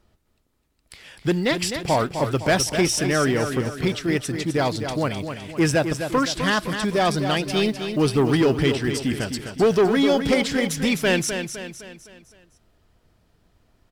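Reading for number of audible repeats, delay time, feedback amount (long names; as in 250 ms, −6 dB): 5, 256 ms, 46%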